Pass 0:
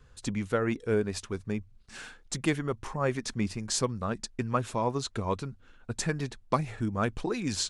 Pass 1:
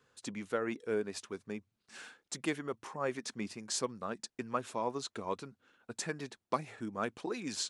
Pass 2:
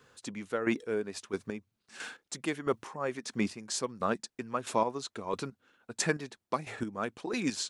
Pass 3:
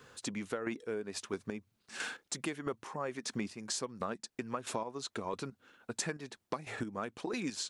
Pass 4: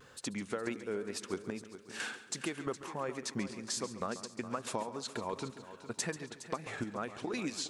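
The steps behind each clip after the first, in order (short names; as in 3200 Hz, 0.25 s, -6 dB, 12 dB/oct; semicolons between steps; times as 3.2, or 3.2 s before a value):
HPF 240 Hz 12 dB/oct; gain -5.5 dB
chopper 1.5 Hz, depth 60%, duty 25%; gain +9 dB
compressor 6:1, threshold -39 dBFS, peak gain reduction 16 dB; gain +4.5 dB
wow and flutter 56 cents; multi-head echo 0.138 s, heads first and third, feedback 46%, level -14 dB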